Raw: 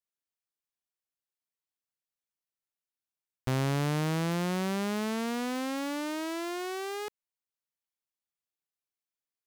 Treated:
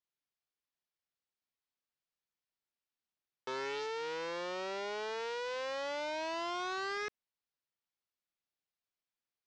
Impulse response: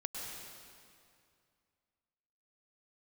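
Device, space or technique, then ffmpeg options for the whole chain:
overflowing digital effects unit: -af "aeval=exprs='(mod(47.3*val(0)+1,2)-1)/47.3':c=same,lowpass=f=5.7k:w=0.5412,lowpass=f=5.7k:w=1.3066,lowpass=8.7k"

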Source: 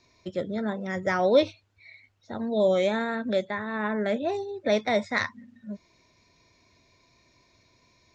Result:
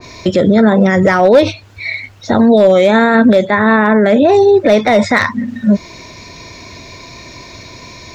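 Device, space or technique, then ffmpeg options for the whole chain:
loud club master: -af "acompressor=threshold=-31dB:ratio=1.5,asoftclip=type=hard:threshold=-20.5dB,alimiter=level_in=30.5dB:limit=-1dB:release=50:level=0:latency=1,adynamicequalizer=threshold=0.0562:dfrequency=2200:dqfactor=0.7:tfrequency=2200:tqfactor=0.7:attack=5:release=100:ratio=0.375:range=2:mode=cutabove:tftype=highshelf,volume=-1dB"

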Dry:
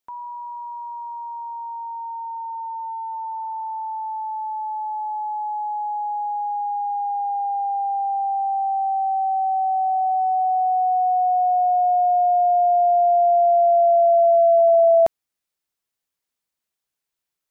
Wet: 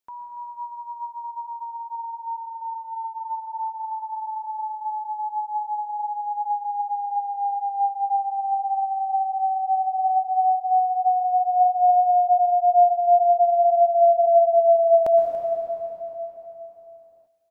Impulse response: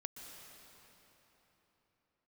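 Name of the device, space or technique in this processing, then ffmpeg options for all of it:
cave: -filter_complex "[0:a]aecho=1:1:285:0.178[a];[1:a]atrim=start_sample=2205[b];[a][b]afir=irnorm=-1:irlink=0,volume=1.5dB"

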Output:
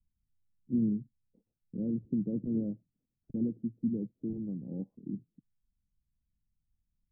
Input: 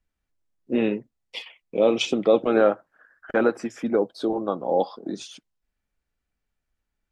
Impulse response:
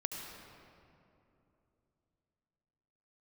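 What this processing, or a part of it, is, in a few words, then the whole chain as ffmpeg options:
the neighbour's flat through the wall: -af "lowpass=f=220:w=0.5412,lowpass=f=220:w=1.3066,equalizer=f=120:t=o:w=0.98:g=5"

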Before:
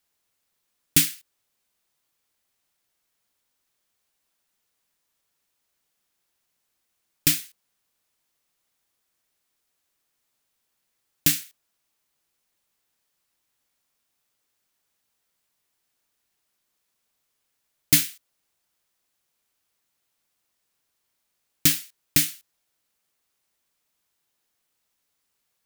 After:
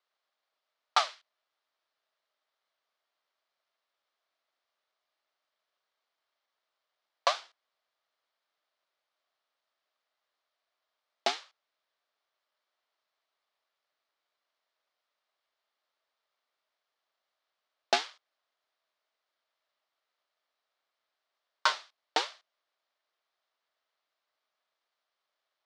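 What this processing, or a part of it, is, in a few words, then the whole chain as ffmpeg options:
voice changer toy: -af "aeval=exprs='val(0)*sin(2*PI*880*n/s+880*0.4/1.2*sin(2*PI*1.2*n/s))':c=same,highpass=530,equalizer=f=630:t=q:w=4:g=8,equalizer=f=1.2k:t=q:w=4:g=5,equalizer=f=2.6k:t=q:w=4:g=-4,lowpass=f=4.5k:w=0.5412,lowpass=f=4.5k:w=1.3066"

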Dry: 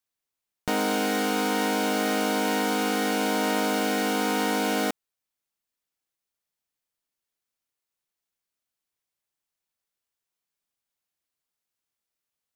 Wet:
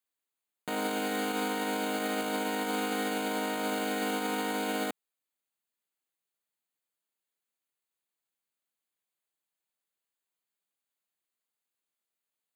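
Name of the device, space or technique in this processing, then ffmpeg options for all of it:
PA system with an anti-feedback notch: -af "highpass=170,asuperstop=centerf=5500:order=4:qfactor=3.7,alimiter=limit=-19.5dB:level=0:latency=1:release=31,volume=-2.5dB"

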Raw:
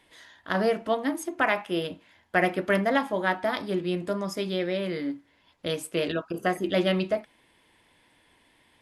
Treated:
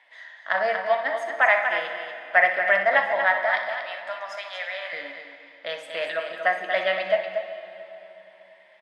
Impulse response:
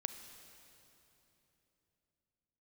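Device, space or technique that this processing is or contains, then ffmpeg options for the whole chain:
station announcement: -filter_complex "[0:a]asettb=1/sr,asplit=3[a][b][c];[a]atrim=end=3.454[d];[b]atrim=start=3.45:end=4.93,asetpts=PTS-STARTPTS,afade=t=in:d=0.004:c=qsin,afade=t=out:st=1.476:d=0.004:c=qsin,highpass=f=710:w=0.5412,highpass=f=710:w=1.3066[e];[c]atrim=start=4.926[f];[d][e]acrossfade=d=0.004:c1=hsin:c2=qsin[g];[g][f]acrossfade=d=0.004:c1=qsin:c2=hsin,highpass=310,lowpass=4.5k,equalizer=f=1.9k:t=o:w=0.52:g=11,aecho=1:1:61.22|236.2:0.282|0.398[h];[1:a]atrim=start_sample=2205[i];[h][i]afir=irnorm=-1:irlink=0,lowshelf=f=490:t=q:w=3:g=-9.5"

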